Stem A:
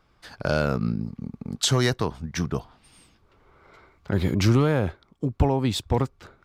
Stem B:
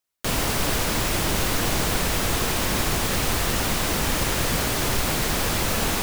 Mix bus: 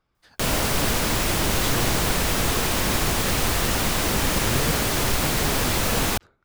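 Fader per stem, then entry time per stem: -11.0, +1.0 dB; 0.00, 0.15 s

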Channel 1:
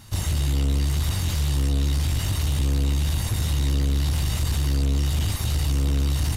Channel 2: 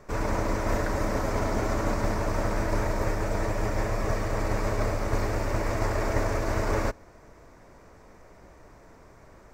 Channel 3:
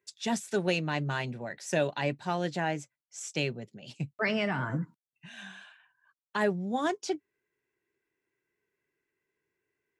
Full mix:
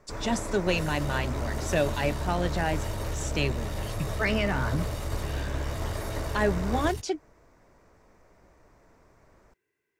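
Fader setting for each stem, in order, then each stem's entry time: -12.0, -7.5, +2.0 dB; 0.65, 0.00, 0.00 s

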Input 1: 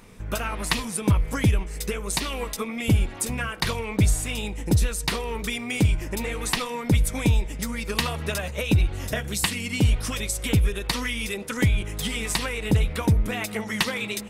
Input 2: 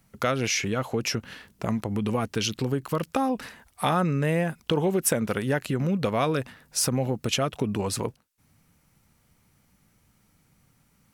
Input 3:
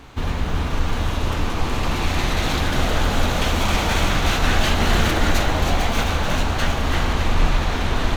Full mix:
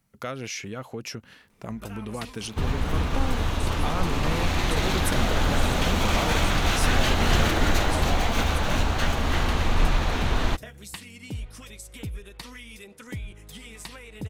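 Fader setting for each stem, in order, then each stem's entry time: -14.5, -8.0, -3.5 dB; 1.50, 0.00, 2.40 s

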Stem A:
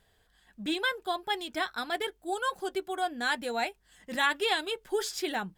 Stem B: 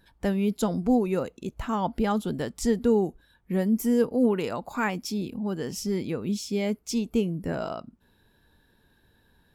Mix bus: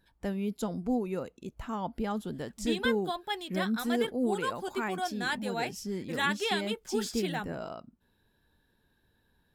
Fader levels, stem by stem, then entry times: -3.0, -7.5 dB; 2.00, 0.00 s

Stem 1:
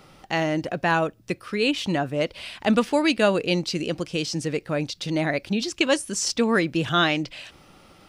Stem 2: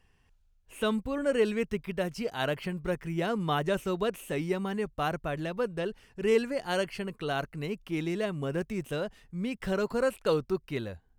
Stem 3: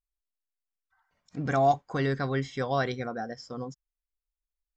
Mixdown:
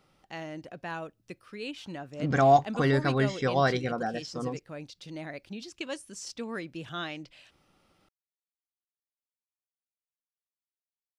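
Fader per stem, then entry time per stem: -15.5 dB, off, +3.0 dB; 0.00 s, off, 0.85 s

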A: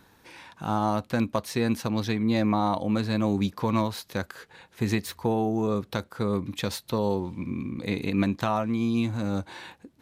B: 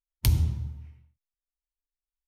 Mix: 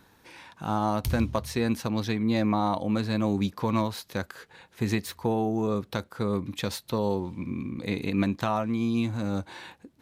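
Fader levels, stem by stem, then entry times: -1.0, -7.5 dB; 0.00, 0.80 s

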